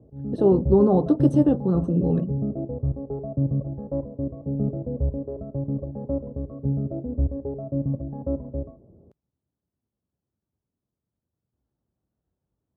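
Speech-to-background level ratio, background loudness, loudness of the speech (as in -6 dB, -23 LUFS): 8.0 dB, -29.0 LUFS, -21.0 LUFS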